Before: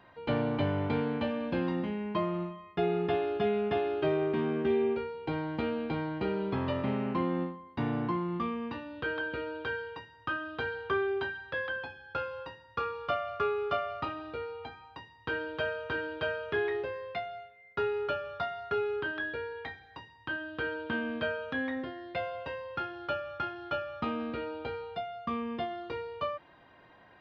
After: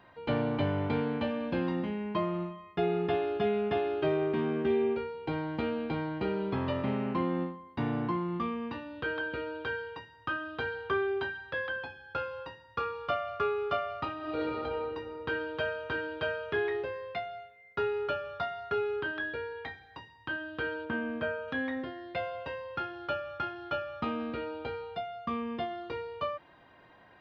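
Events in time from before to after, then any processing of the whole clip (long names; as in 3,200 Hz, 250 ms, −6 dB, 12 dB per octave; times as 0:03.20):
0:14.18–0:14.63: thrown reverb, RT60 2.9 s, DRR −8 dB
0:20.85–0:21.48: parametric band 4,000 Hz −9.5 dB 1.1 octaves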